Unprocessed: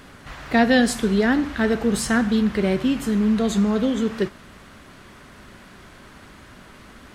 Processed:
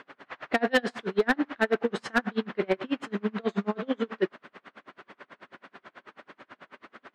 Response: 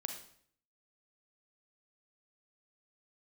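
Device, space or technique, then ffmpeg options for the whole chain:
helicopter radio: -af "highpass=370,lowpass=2.6k,aeval=exprs='val(0)*pow(10,-34*(0.5-0.5*cos(2*PI*9.2*n/s))/20)':c=same,asoftclip=type=hard:threshold=-19.5dB,volume=4.5dB"

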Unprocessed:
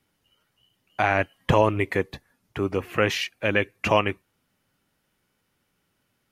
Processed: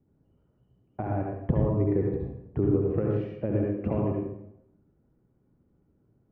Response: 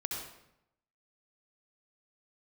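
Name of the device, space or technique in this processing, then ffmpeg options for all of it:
television next door: -filter_complex "[0:a]acompressor=threshold=-27dB:ratio=6,lowpass=380[a];[1:a]atrim=start_sample=2205[b];[a][b]afir=irnorm=-1:irlink=0,volume=8dB"

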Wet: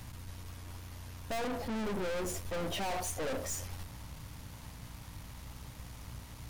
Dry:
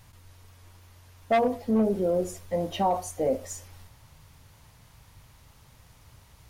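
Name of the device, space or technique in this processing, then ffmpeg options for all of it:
valve amplifier with mains hum: -af "aeval=exprs='(tanh(126*val(0)+0.5)-tanh(0.5))/126':c=same,aeval=exprs='val(0)+0.00141*(sin(2*PI*60*n/s)+sin(2*PI*2*60*n/s)/2+sin(2*PI*3*60*n/s)/3+sin(2*PI*4*60*n/s)/4+sin(2*PI*5*60*n/s)/5)':c=same,volume=7.5dB"

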